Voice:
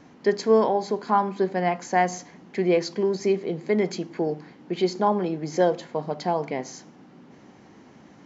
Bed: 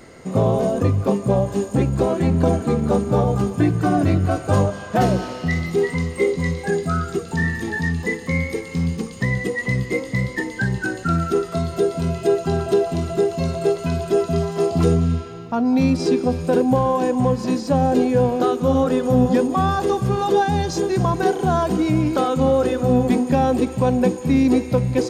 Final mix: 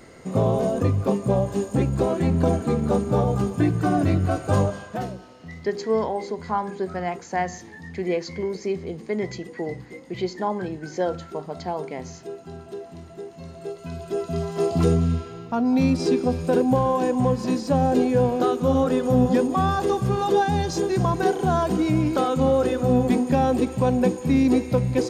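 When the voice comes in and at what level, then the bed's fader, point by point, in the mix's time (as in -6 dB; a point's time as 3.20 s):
5.40 s, -4.0 dB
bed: 4.76 s -3 dB
5.17 s -18 dB
13.38 s -18 dB
14.68 s -2.5 dB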